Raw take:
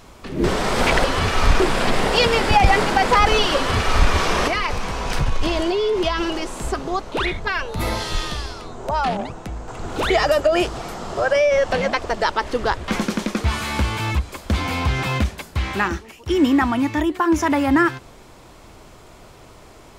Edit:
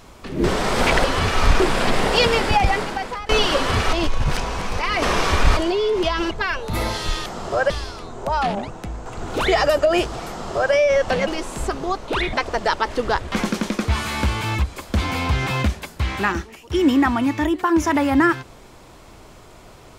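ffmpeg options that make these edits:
-filter_complex "[0:a]asplit=9[a][b][c][d][e][f][g][h][i];[a]atrim=end=3.29,asetpts=PTS-STARTPTS,afade=t=out:st=2.3:d=0.99:silence=0.0668344[j];[b]atrim=start=3.29:end=3.932,asetpts=PTS-STARTPTS,afade=t=in:d=0.004:c=hsin:silence=0.0668344[k];[c]atrim=start=3.928:end=5.572,asetpts=PTS-STARTPTS,areverse[l];[d]atrim=start=5.568:end=6.312[m];[e]atrim=start=7.368:end=8.322[n];[f]atrim=start=10.908:end=11.352[o];[g]atrim=start=8.318:end=11.892[p];[h]atrim=start=6.308:end=7.372[q];[i]atrim=start=11.888[r];[j][k]concat=n=2:v=0:a=1[s];[s][l]acrossfade=d=0.004:c1=hsin:c2=hsin[t];[t][m]acrossfade=d=0.004:c1=hsin:c2=hsin[u];[u][n]acrossfade=d=0.004:c1=hsin:c2=hsin[v];[v][o]acrossfade=d=0.004:c1=hsin:c2=hsin[w];[w][p]acrossfade=d=0.004:c1=hsin:c2=hsin[x];[x][q]acrossfade=d=0.004:c1=hsin:c2=hsin[y];[y][r]acrossfade=d=0.004:c1=hsin:c2=hsin"

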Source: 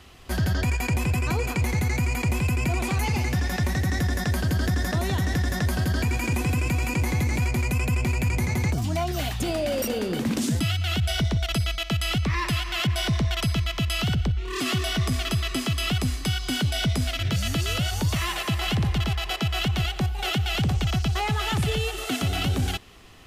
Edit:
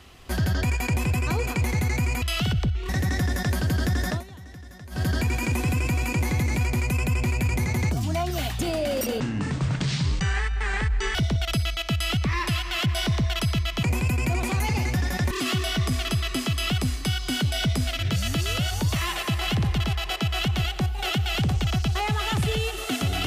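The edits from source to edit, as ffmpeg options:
-filter_complex "[0:a]asplit=9[a][b][c][d][e][f][g][h][i];[a]atrim=end=2.222[j];[b]atrim=start=13.838:end=14.512[k];[c]atrim=start=3.698:end=5.05,asetpts=PTS-STARTPTS,afade=t=out:st=1.222:d=0.13:silence=0.125893[l];[d]atrim=start=5.05:end=5.71,asetpts=PTS-STARTPTS,volume=-18dB[m];[e]atrim=start=5.71:end=10.014,asetpts=PTS-STARTPTS,afade=t=in:d=0.13:silence=0.125893[n];[f]atrim=start=10.01:end=11.16,asetpts=PTS-STARTPTS,asetrate=26019,aresample=44100[o];[g]atrim=start=11.156:end=13.842[p];[h]atrim=start=2.218:end=3.702[q];[i]atrim=start=14.508[r];[j][k]acrossfade=d=0.004:c1=hsin:c2=hsin[s];[l][m][n]concat=n=3:v=0:a=1[t];[s][t]acrossfade=d=0.004:c1=hsin:c2=hsin[u];[u][o]acrossfade=d=0.004:c1=hsin:c2=hsin[v];[v][p]acrossfade=d=0.004:c1=hsin:c2=hsin[w];[w][q]acrossfade=d=0.004:c1=hsin:c2=hsin[x];[x][r]acrossfade=d=0.004:c1=hsin:c2=hsin"

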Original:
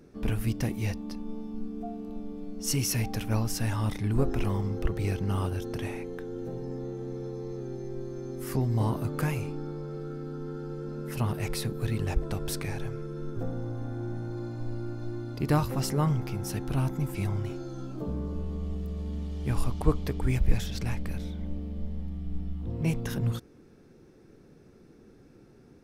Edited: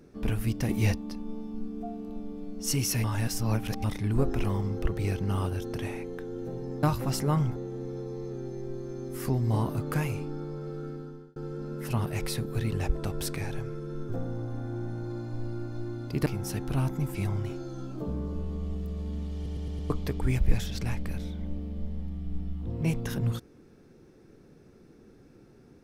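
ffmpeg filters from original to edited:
-filter_complex "[0:a]asplit=14[a][b][c][d][e][f][g][h][i][j][k][l][m][n];[a]atrim=end=0.692[o];[b]atrim=start=0.688:end=0.952,asetpts=PTS-STARTPTS,volume=5.5dB[p];[c]atrim=start=0.948:end=3.042[q];[d]atrim=start=3.038:end=3.842,asetpts=PTS-STARTPTS,areverse[r];[e]atrim=start=3.838:end=6.832[s];[f]atrim=start=15.528:end=16.262[t];[g]atrim=start=6.828:end=10.63,asetpts=PTS-STARTPTS,afade=t=out:st=3.332:d=0.47[u];[h]atrim=start=10.63:end=15.532,asetpts=PTS-STARTPTS,afade=t=in:d=0.004:c=hsin[v];[i]atrim=start=16.258:end=19.462[w];[j]atrim=start=19.348:end=19.462[x];[k]atrim=start=19.348:end=19.462[y];[l]atrim=start=19.348:end=19.462[z];[m]atrim=start=19.348:end=19.462[aa];[n]atrim=start=19.898[ab];[o][p]acrossfade=d=0.004:c1=hsin:c2=hsin[ac];[ac][q]acrossfade=d=0.004:c1=hsin:c2=hsin[ad];[ad][r]acrossfade=d=0.004:c1=hsin:c2=hsin[ae];[ae][s]acrossfade=d=0.004:c1=hsin:c2=hsin[af];[af][t]acrossfade=d=0.004:c1=hsin:c2=hsin[ag];[u][v]concat=n=2:v=0:a=1[ah];[ag][ah]acrossfade=d=0.004:c1=hsin:c2=hsin[ai];[ai][w]acrossfade=d=0.004:c1=hsin:c2=hsin[aj];[aj][x]acrossfade=d=0.004:c1=hsin:c2=hsin[ak];[ak][y]acrossfade=d=0.004:c1=hsin:c2=hsin[al];[al][z]acrossfade=d=0.004:c1=hsin:c2=hsin[am];[am][aa]acrossfade=d=0.004:c1=hsin:c2=hsin[an];[an][ab]acrossfade=d=0.004:c1=hsin:c2=hsin"

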